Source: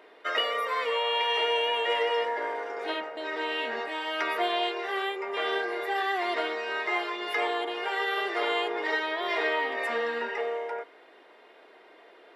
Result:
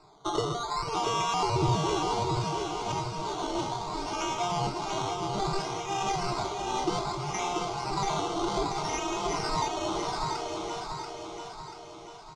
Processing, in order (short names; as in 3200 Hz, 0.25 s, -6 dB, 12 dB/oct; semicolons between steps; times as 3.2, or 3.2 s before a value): tilt shelf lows -9 dB, about 710 Hz; notch 2600 Hz, Q 7.7; decimation with a swept rate 14×, swing 60% 0.63 Hz; LPF 6500 Hz 24 dB/oct; low shelf 300 Hz +7 dB; fixed phaser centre 350 Hz, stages 8; on a send: feedback echo 0.686 s, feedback 51%, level -4.5 dB; on the sum: gain -3.5 dB